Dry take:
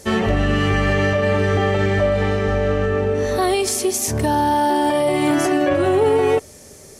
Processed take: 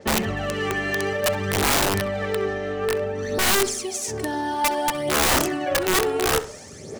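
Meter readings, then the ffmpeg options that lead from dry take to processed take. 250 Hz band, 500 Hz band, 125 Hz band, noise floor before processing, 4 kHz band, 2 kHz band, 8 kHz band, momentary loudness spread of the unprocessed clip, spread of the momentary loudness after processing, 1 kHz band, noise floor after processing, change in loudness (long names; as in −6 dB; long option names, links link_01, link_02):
−8.0 dB, −6.5 dB, −10.5 dB, −43 dBFS, +2.5 dB, −1.0 dB, +1.5 dB, 3 LU, 7 LU, −4.5 dB, −39 dBFS, −4.5 dB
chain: -filter_complex "[0:a]bandreject=frequency=1000:width=21,adynamicsmooth=sensitivity=7:basefreq=6000,equalizer=frequency=12000:width=2:gain=-10.5,areverse,acompressor=mode=upward:threshold=-23dB:ratio=2.5,areverse,highpass=120,aphaser=in_gain=1:out_gain=1:delay=2.9:decay=0.61:speed=0.57:type=sinusoidal,aeval=exprs='(mod(2.51*val(0)+1,2)-1)/2.51':channel_layout=same,asplit=2[link_01][link_02];[link_02]adelay=66,lowpass=frequency=2600:poles=1,volume=-13.5dB,asplit=2[link_03][link_04];[link_04]adelay=66,lowpass=frequency=2600:poles=1,volume=0.42,asplit=2[link_05][link_06];[link_06]adelay=66,lowpass=frequency=2600:poles=1,volume=0.42,asplit=2[link_07][link_08];[link_08]adelay=66,lowpass=frequency=2600:poles=1,volume=0.42[link_09];[link_01][link_03][link_05][link_07][link_09]amix=inputs=5:normalize=0,adynamicequalizer=threshold=0.0316:dfrequency=5500:dqfactor=0.7:tfrequency=5500:tqfactor=0.7:attack=5:release=100:ratio=0.375:range=2.5:mode=boostabove:tftype=highshelf,volume=-7.5dB"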